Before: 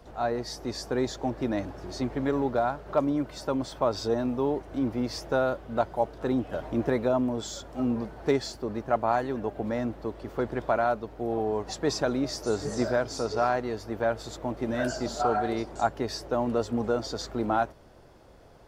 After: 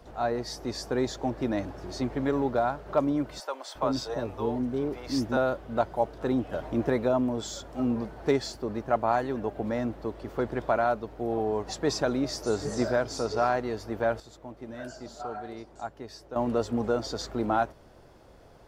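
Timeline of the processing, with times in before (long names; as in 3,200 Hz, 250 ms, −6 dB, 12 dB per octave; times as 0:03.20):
0:03.40–0:05.37: multiband delay without the direct sound highs, lows 350 ms, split 520 Hz
0:14.20–0:16.36: clip gain −11 dB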